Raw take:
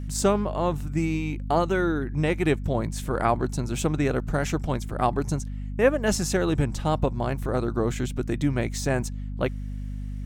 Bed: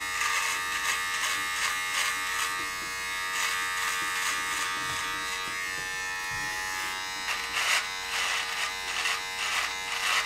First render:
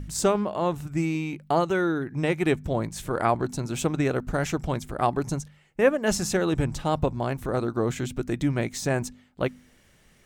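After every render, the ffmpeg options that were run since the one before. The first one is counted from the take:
-af "bandreject=f=50:t=h:w=4,bandreject=f=100:t=h:w=4,bandreject=f=150:t=h:w=4,bandreject=f=200:t=h:w=4,bandreject=f=250:t=h:w=4"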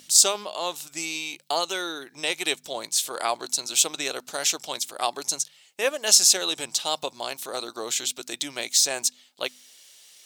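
-af "highpass=640,highshelf=f=2600:t=q:w=1.5:g=13.5"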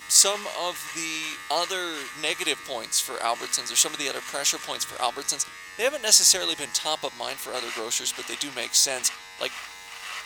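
-filter_complex "[1:a]volume=0.335[s0];[0:a][s0]amix=inputs=2:normalize=0"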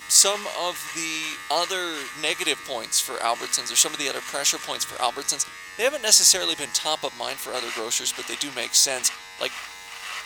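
-af "volume=1.26,alimiter=limit=0.794:level=0:latency=1"

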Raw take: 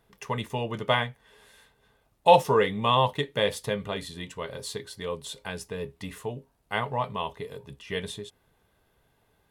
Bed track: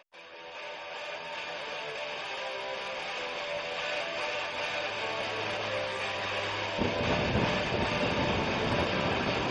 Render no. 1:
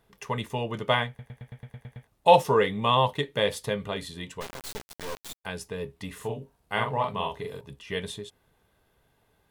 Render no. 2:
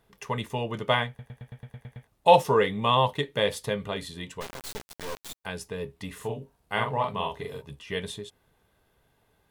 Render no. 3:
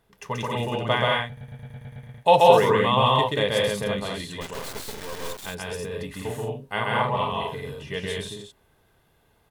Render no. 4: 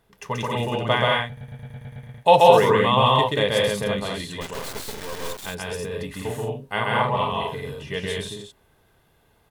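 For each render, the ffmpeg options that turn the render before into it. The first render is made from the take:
-filter_complex "[0:a]asplit=3[s0][s1][s2];[s0]afade=t=out:st=4.4:d=0.02[s3];[s1]acrusher=bits=3:dc=4:mix=0:aa=0.000001,afade=t=in:st=4.4:d=0.02,afade=t=out:st=5.44:d=0.02[s4];[s2]afade=t=in:st=5.44:d=0.02[s5];[s3][s4][s5]amix=inputs=3:normalize=0,asettb=1/sr,asplit=3[s6][s7][s8];[s6]atrim=end=6.154[s9];[s7]atrim=start=6.15:end=7.61,asetpts=PTS-STARTPTS,afade=t=in:d=0.004:c=qsin,afade=t=out:st=1.456:d=0.004:c=qsin,asplit=2[s10][s11];[s11]adelay=44,volume=0.668[s12];[s10][s12]amix=inputs=2:normalize=0,atrim=end_sample=64386[s13];[s8]atrim=start=7.606[s14];[s9][s13]acrossfade=d=0.004:c1=hsin:c2=qsin[s15];[s15][s14]acrossfade=d=0.004:c1=qsin:c2=hsin,asplit=10[s16][s17][s18][s19][s20][s21][s22][s23][s24][s25];[s16]atrim=end=1.192[s26];[s17]atrim=start=1.078:end=1.192[s27];[s18]atrim=start=1.078:end=1.192[s28];[s19]atrim=start=1.078:end=1.192[s29];[s20]atrim=start=1.078:end=1.192[s30];[s21]atrim=start=1.078:end=1.192[s31];[s22]atrim=start=1.078:end=1.192[s32];[s23]atrim=start=1.078:end=1.192[s33];[s24]atrim=start=1.078:end=1.192[s34];[s25]atrim=start=2.068[s35];[s26][s27]acrossfade=d=0.004:c1=hsin:c2=hsin[s36];[s36][s28]acrossfade=d=0.004:c1=hsin:c2=hsin[s37];[s37][s29]acrossfade=d=0.004:c1=hsin:c2=hsin[s38];[s38][s30]acrossfade=d=0.004:c1=hsin:c2=hsin[s39];[s39][s31]acrossfade=d=0.004:c1=hsin:c2=hsin[s40];[s40][s32]acrossfade=d=0.004:c1=hsin:c2=hsin[s41];[s41][s33]acrossfade=d=0.004:c1=hsin:c2=hsin[s42];[s42][s34]acrossfade=d=0.004:c1=hsin:c2=hsin[s43];[s43][s35]acrossfade=d=0.004:c1=hsin:c2=hsin"
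-filter_complex "[0:a]asettb=1/sr,asplit=3[s0][s1][s2];[s0]atrim=end=1.134[s3];[s1]atrim=start=1.13:end=1.75,asetpts=PTS-STARTPTS,afade=t=in:d=0.004:c=qsin,afade=t=out:st=0.616:d=0.004:c=qsin,bandreject=f=2100:w=13[s4];[s2]atrim=start=1.746[s5];[s3][s4]acrossfade=d=0.004:c1=hsin:c2=qsin[s6];[s6][s5]acrossfade=d=0.004:c1=qsin:c2=hsin,asettb=1/sr,asplit=3[s7][s8][s9];[s7]atrim=end=7.384[s10];[s8]atrim=start=7.38:end=7.85,asetpts=PTS-STARTPTS,afade=t=in:d=0.004:c=qsin,afade=t=out:st=0.466:d=0.004:c=qsin,asplit=2[s11][s12];[s12]adelay=13,volume=0.501[s13];[s11][s13]amix=inputs=2:normalize=0,atrim=end_sample=20727[s14];[s9]atrim=start=7.846[s15];[s10][s14]acrossfade=d=0.004:c1=hsin:c2=qsin[s16];[s16][s15]acrossfade=d=0.004:c1=qsin:c2=hsin"
-af "aecho=1:1:131.2|183.7|218.7:0.891|0.708|0.631"
-af "volume=1.26,alimiter=limit=0.891:level=0:latency=1"

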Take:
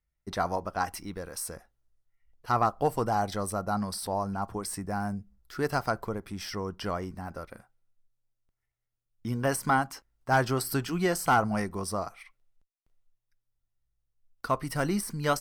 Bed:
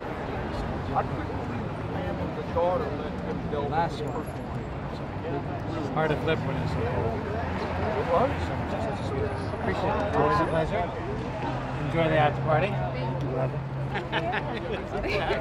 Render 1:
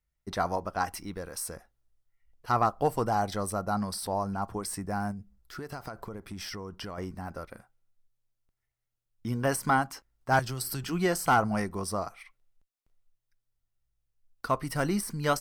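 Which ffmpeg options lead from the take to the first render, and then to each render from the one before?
-filter_complex "[0:a]asettb=1/sr,asplit=3[s0][s1][s2];[s0]atrim=end=5.114[s3];[s1]atrim=start=5.11:end=6.98,asetpts=PTS-STARTPTS,afade=t=in:d=0.004:c=qsin,afade=t=out:st=1.866:d=0.004:c=qsin,acompressor=threshold=0.02:ratio=16:attack=3.2:release=140:knee=1:detection=peak[s4];[s2]atrim=start=6.976[s5];[s3][s4]acrossfade=d=0.004:c1=hsin:c2=qsin[s6];[s6][s5]acrossfade=d=0.004:c1=qsin:c2=hsin,asettb=1/sr,asplit=3[s7][s8][s9];[s7]atrim=end=10.394[s10];[s8]atrim=start=10.39:end=10.84,asetpts=PTS-STARTPTS,afade=t=in:d=0.004:c=qsin,afade=t=out:st=0.446:d=0.004:c=qsin,acrossover=split=140|3000[s11][s12][s13];[s12]acompressor=threshold=0.0126:ratio=6:attack=3.2:release=140:knee=2.83:detection=peak[s14];[s11][s14][s13]amix=inputs=3:normalize=0[s15];[s9]atrim=start=10.836[s16];[s10][s15]acrossfade=d=0.004:c1=hsin:c2=qsin[s17];[s17][s16]acrossfade=d=0.004:c1=qsin:c2=hsin"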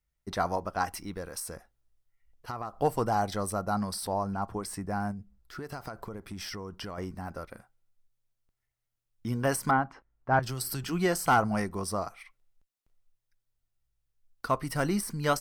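-filter_complex "[0:a]asettb=1/sr,asplit=3[s0][s1][s2];[s0]atrim=end=1.394[s3];[s1]atrim=start=1.39:end=2.77,asetpts=PTS-STARTPTS,afade=t=in:d=0.004:c=qsin,afade=t=out:st=1.376:d=0.004:c=qsin,acompressor=threshold=0.0224:ratio=6:attack=3.2:release=140:knee=1:detection=peak[s4];[s2]atrim=start=2.766[s5];[s3][s4]acrossfade=d=0.004:c1=hsin:c2=qsin[s6];[s6][s5]acrossfade=d=0.004:c1=qsin:c2=hsin,asettb=1/sr,asplit=3[s7][s8][s9];[s7]atrim=end=4.134[s10];[s8]atrim=start=4.13:end=5.64,asetpts=PTS-STARTPTS,afade=t=in:d=0.004:c=qsin,afade=t=out:st=1.506:d=0.004:c=qsin,highshelf=f=4800:g=-5[s11];[s9]atrim=start=5.636[s12];[s10][s11]acrossfade=d=0.004:c1=hsin:c2=qsin[s13];[s13][s12]acrossfade=d=0.004:c1=qsin:c2=hsin,asettb=1/sr,asplit=3[s14][s15][s16];[s14]atrim=end=9.714[s17];[s15]atrim=start=9.71:end=10.43,asetpts=PTS-STARTPTS,afade=t=in:d=0.004:c=qsin,afade=t=out:st=0.716:d=0.004:c=qsin,lowpass=1800[s18];[s16]atrim=start=10.426[s19];[s17][s18]acrossfade=d=0.004:c1=hsin:c2=qsin[s20];[s20][s19]acrossfade=d=0.004:c1=qsin:c2=hsin"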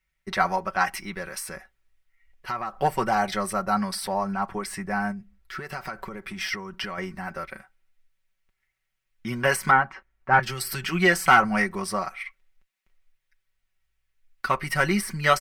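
-af "equalizer=f=2100:w=1:g=14,aecho=1:1:5.3:0.72"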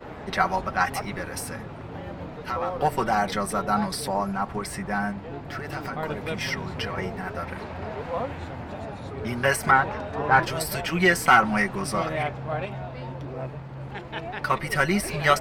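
-filter_complex "[1:a]volume=0.501[s0];[0:a][s0]amix=inputs=2:normalize=0"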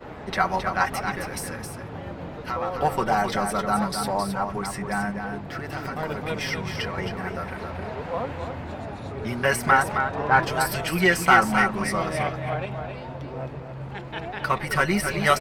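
-af "aecho=1:1:266:0.473"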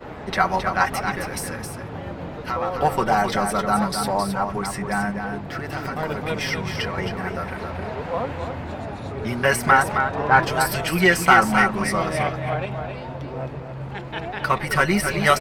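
-af "volume=1.41,alimiter=limit=0.794:level=0:latency=1"

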